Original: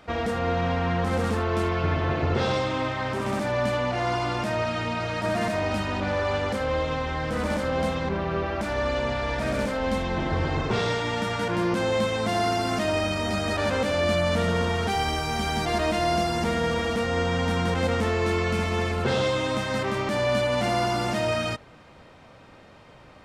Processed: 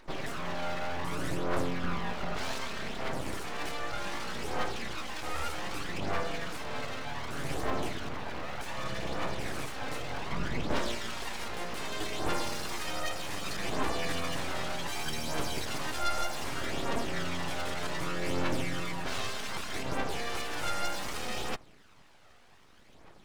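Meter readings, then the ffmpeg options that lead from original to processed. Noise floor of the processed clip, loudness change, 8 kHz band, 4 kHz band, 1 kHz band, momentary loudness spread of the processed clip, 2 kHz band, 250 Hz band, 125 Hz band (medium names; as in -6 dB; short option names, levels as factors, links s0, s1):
-56 dBFS, -9.5 dB, -1.0 dB, -5.5 dB, -9.0 dB, 5 LU, -7.5 dB, -11.0 dB, -13.0 dB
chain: -af "aphaser=in_gain=1:out_gain=1:delay=1.6:decay=0.62:speed=0.65:type=triangular,highshelf=f=5800:g=8.5,aeval=exprs='abs(val(0))':c=same,volume=0.355"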